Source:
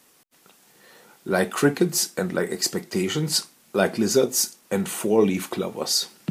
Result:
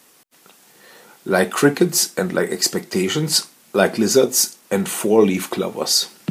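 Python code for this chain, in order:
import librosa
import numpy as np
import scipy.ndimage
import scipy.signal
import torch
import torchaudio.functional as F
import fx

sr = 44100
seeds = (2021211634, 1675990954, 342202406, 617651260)

y = fx.low_shelf(x, sr, hz=110.0, db=-7.0)
y = F.gain(torch.from_numpy(y), 5.5).numpy()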